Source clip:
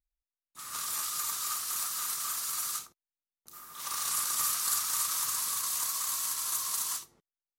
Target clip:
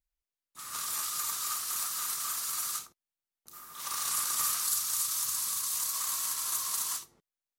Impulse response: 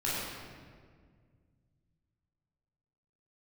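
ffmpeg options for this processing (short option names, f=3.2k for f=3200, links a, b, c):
-filter_complex "[0:a]asettb=1/sr,asplit=3[a][b][c];[a]atrim=end=4.644[d];[b]atrim=start=4.64:end=5.93,asetpts=PTS-STARTPTS,afade=t=in:d=0.004:c=qsin,afade=t=out:st=1.286:d=0.004:c=qsin,acrossover=split=200|3000[e][f][g];[f]acompressor=threshold=-45dB:ratio=6[h];[e][h][g]amix=inputs=3:normalize=0[i];[c]atrim=start=5.926[j];[d][i]acrossfade=d=0.004:c1=hsin:c2=qsin[k];[k][j]acrossfade=d=0.004:c1=qsin:c2=hsin"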